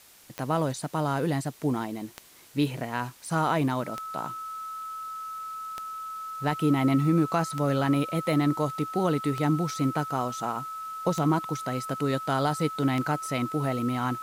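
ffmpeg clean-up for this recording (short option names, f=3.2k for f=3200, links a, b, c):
-af "adeclick=t=4,bandreject=f=1.3k:w=30,afwtdn=0.0022"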